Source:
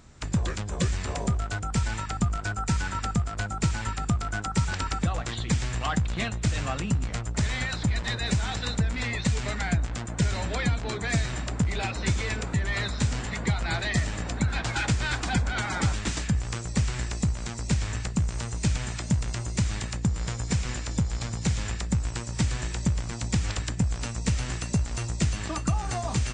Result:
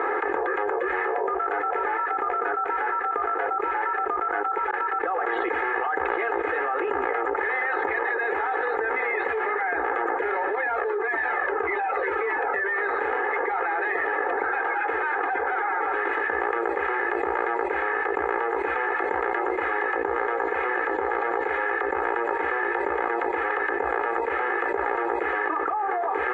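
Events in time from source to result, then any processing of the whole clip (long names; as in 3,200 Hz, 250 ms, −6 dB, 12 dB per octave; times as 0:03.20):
0:01.02–0:01.79: delay throw 570 ms, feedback 75%, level −9 dB
0:04.71–0:06.09: fade in
0:10.55–0:12.78: flanger whose copies keep moving one way falling 1.7 Hz
whole clip: elliptic band-pass filter 400–1,800 Hz, stop band 50 dB; comb filter 2.4 ms, depth 87%; envelope flattener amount 100%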